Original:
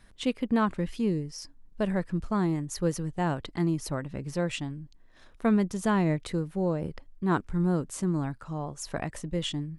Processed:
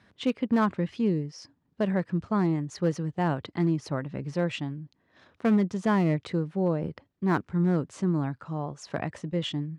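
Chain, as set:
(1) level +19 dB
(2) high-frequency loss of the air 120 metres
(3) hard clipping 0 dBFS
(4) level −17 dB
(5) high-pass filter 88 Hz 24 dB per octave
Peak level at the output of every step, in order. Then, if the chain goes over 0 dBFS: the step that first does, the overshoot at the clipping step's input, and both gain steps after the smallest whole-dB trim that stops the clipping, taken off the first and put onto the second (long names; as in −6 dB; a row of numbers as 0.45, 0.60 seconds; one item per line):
+5.5, +5.0, 0.0, −17.0, −13.0 dBFS
step 1, 5.0 dB
step 1 +14 dB, step 4 −12 dB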